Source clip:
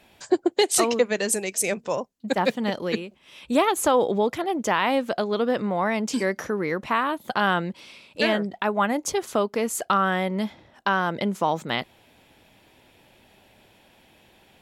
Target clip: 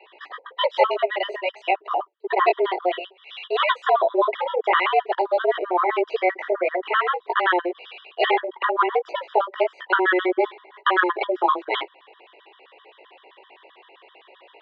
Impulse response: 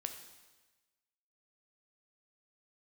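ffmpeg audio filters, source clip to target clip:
-filter_complex "[0:a]asettb=1/sr,asplit=3[link_01][link_02][link_03];[link_01]atrim=end=2.994[link_04];[link_02]atrim=start=2.99:end=3.88,asetpts=PTS-STARTPTS,afade=type=in:duration=0.004:curve=qsin,afade=type=out:start_time=0.886:duration=0.004:curve=qsin,aemphasis=mode=production:type=riaa[link_05];[link_03]atrim=start=3.876[link_06];[link_04][link_05]acrossfade=duration=0.004:curve1=hsin:curve2=qsin[link_07];[link_07][link_06]acrossfade=duration=0.004:curve1=qsin:curve2=hsin,asettb=1/sr,asplit=3[link_08][link_09][link_10];[link_08]atrim=end=9.884[link_11];[link_09]atrim=start=9.88:end=11.52,asetpts=PTS-STARTPTS,afade=type=in:duration=0.004:curve=qsin,afade=type=out:start_time=1.636:duration=0.004:curve=qsin,aecho=1:1:4.7:0.82,atrim=end_sample=72324[link_12];[link_10]atrim=start=11.516[link_13];[link_11][link_12]acrossfade=duration=0.004:curve1=hsin:curve2=qsin[link_14];[link_14][link_13]acrossfade=duration=0.004:curve1=qsin:curve2=hsin,asplit=2[link_15][link_16];[link_16]acompressor=threshold=-37dB:ratio=6,volume=-1.5dB[link_17];[link_15][link_17]amix=inputs=2:normalize=0,flanger=delay=16.5:depth=5.9:speed=0.54,highpass=frequency=170:width_type=q:width=0.5412,highpass=frequency=170:width_type=q:width=1.307,lowpass=frequency=3200:width_type=q:width=0.5176,lowpass=frequency=3200:width_type=q:width=0.7071,lowpass=frequency=3200:width_type=q:width=1.932,afreqshift=180,afftfilt=real='re*gt(sin(2*PI*7.7*pts/sr)*(1-2*mod(floor(b*sr/1024/970),2)),0)':imag='im*gt(sin(2*PI*7.7*pts/sr)*(1-2*mod(floor(b*sr/1024/970),2)),0)':win_size=1024:overlap=0.75,volume=7.5dB"

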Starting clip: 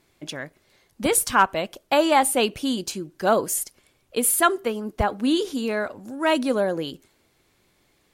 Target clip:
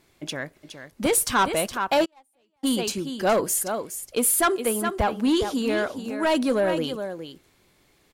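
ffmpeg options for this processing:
ffmpeg -i in.wav -filter_complex "[0:a]asplit=2[link_01][link_02];[link_02]aecho=0:1:416:0.299[link_03];[link_01][link_03]amix=inputs=2:normalize=0,asoftclip=type=tanh:threshold=-16.5dB,asplit=3[link_04][link_05][link_06];[link_04]afade=type=out:start_time=2.04:duration=0.02[link_07];[link_05]agate=range=-46dB:threshold=-16dB:ratio=16:detection=peak,afade=type=in:start_time=2.04:duration=0.02,afade=type=out:start_time=2.63:duration=0.02[link_08];[link_06]afade=type=in:start_time=2.63:duration=0.02[link_09];[link_07][link_08][link_09]amix=inputs=3:normalize=0,volume=2dB" out.wav

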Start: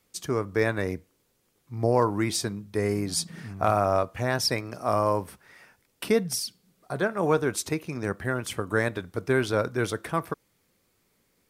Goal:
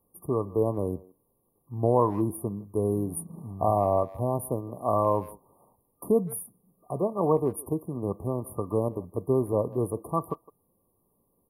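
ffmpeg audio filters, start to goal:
ffmpeg -i in.wav -filter_complex "[0:a]afftfilt=real='re*(1-between(b*sr/4096,1200,9400))':imag='im*(1-between(b*sr/4096,1200,9400))':win_size=4096:overlap=0.75,asplit=2[link_01][link_02];[link_02]adelay=160,highpass=300,lowpass=3400,asoftclip=type=hard:threshold=-18dB,volume=-20dB[link_03];[link_01][link_03]amix=inputs=2:normalize=0" out.wav

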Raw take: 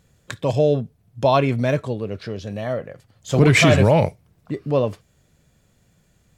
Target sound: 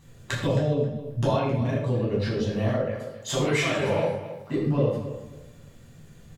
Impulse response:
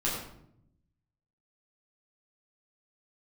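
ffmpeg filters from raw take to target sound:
-filter_complex "[0:a]asettb=1/sr,asplit=3[link_01][link_02][link_03];[link_01]atrim=end=2.844[link_04];[link_02]atrim=start=2.84:end=4.55,asetpts=PTS-STARTPTS,afade=type=in:duration=0.004:curve=qsin,afade=type=out:start_time=1.706:duration=0.004:curve=qsin,highpass=frequency=570:poles=1[link_05];[link_03]atrim=start=4.546[link_06];[link_04][link_05]acrossfade=duration=0.004:curve1=hsin:curve2=qsin[link_07];[link_07][link_06]acrossfade=duration=0.004:curve1=qsin:curve2=hsin,acompressor=threshold=-31dB:ratio=6,asettb=1/sr,asplit=3[link_08][link_09][link_10];[link_08]atrim=end=1.404[link_11];[link_09]atrim=start=1.4:end=1.86,asetpts=PTS-STARTPTS,afade=type=in:duration=0.004:curve=qsin,afade=type=out:start_time=0.456:duration=0.004:curve=qsin,tremolo=f=27:d=1[link_12];[link_10]atrim=start=1.856[link_13];[link_11][link_12]acrossfade=duration=0.004:curve1=hsin:curve2=qsin[link_14];[link_14][link_13]acrossfade=duration=0.004:curve1=qsin:curve2=hsin,asplit=2[link_15][link_16];[link_16]adelay=267,lowpass=frequency=3700:poles=1,volume=-12dB,asplit=2[link_17][link_18];[link_18]adelay=267,lowpass=frequency=3700:poles=1,volume=0.22,asplit=2[link_19][link_20];[link_20]adelay=267,lowpass=frequency=3700:poles=1,volume=0.22[link_21];[link_15][link_17][link_19][link_21]amix=inputs=4:normalize=0[link_22];[1:a]atrim=start_sample=2205,afade=type=out:start_time=0.21:duration=0.01,atrim=end_sample=9702[link_23];[link_22][link_23]afir=irnorm=-1:irlink=0"

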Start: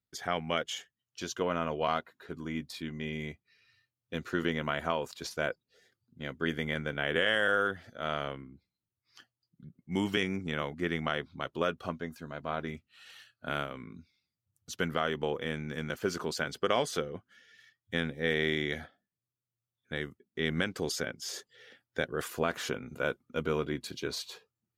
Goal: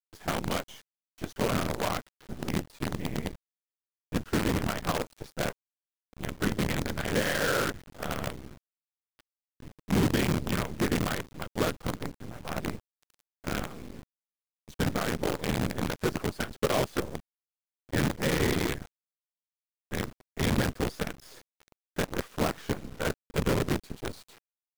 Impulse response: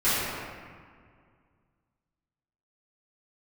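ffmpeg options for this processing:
-af "aemphasis=mode=reproduction:type=riaa,afftfilt=real='hypot(re,im)*cos(2*PI*random(0))':imag='hypot(re,im)*sin(2*PI*random(1))':win_size=512:overlap=0.75,acrusher=bits=6:dc=4:mix=0:aa=0.000001,volume=4.5dB"

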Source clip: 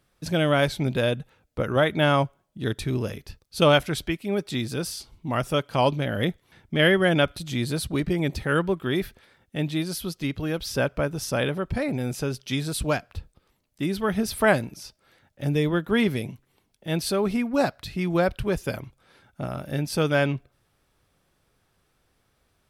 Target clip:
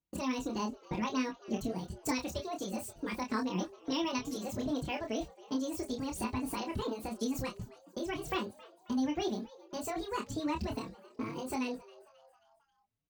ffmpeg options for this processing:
ffmpeg -i in.wav -filter_complex "[0:a]bass=frequency=250:gain=9,treble=frequency=4000:gain=-15,acompressor=threshold=-35dB:ratio=3,asplit=2[link_01][link_02];[link_02]aecho=0:1:47|74:0.562|0.126[link_03];[link_01][link_03]amix=inputs=2:normalize=0,crystalizer=i=3.5:c=0,asetrate=76440,aresample=44100,agate=range=-28dB:threshold=-39dB:ratio=16:detection=peak,asplit=2[link_04][link_05];[link_05]asplit=4[link_06][link_07][link_08][link_09];[link_06]adelay=269,afreqshift=140,volume=-21dB[link_10];[link_07]adelay=538,afreqshift=280,volume=-27dB[link_11];[link_08]adelay=807,afreqshift=420,volume=-33dB[link_12];[link_09]adelay=1076,afreqshift=560,volume=-39.1dB[link_13];[link_10][link_11][link_12][link_13]amix=inputs=4:normalize=0[link_14];[link_04][link_14]amix=inputs=2:normalize=0,asplit=2[link_15][link_16];[link_16]adelay=3.9,afreqshift=2.3[link_17];[link_15][link_17]amix=inputs=2:normalize=1" out.wav

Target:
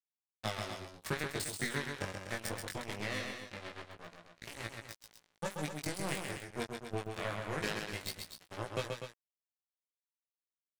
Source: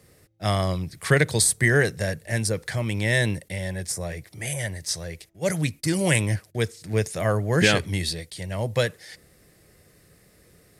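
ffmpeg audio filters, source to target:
ffmpeg -i in.wav -filter_complex "[0:a]highpass=frequency=76:width=0.5412,highpass=frequency=76:width=1.3066,asettb=1/sr,asplit=3[link_01][link_02][link_03];[link_01]atrim=end=3.004[link_04];[link_02]atrim=start=3:end=5.06,asetpts=PTS-STARTPTS,afade=type=in:duration=0.004:curve=qsin,afade=type=out:start_time=2.056:duration=0.004:curve=qsin,aemphasis=mode=reproduction:type=50fm[link_05];[link_03]atrim=start=5.056[link_06];[link_04][link_05]acrossfade=duration=0.004:curve1=hsin:curve2=qsin[link_07];[link_07][link_06]acrossfade=duration=0.004:curve1=qsin:curve2=hsin,lowpass=10000,acompressor=threshold=-26dB:ratio=10,asoftclip=type=tanh:threshold=-21.5dB,acrusher=bits=3:mix=0:aa=0.5,flanger=delay=17.5:depth=3.7:speed=0.23,aecho=1:1:131.2|247.8:0.562|0.355,volume=2.5dB" out.wav

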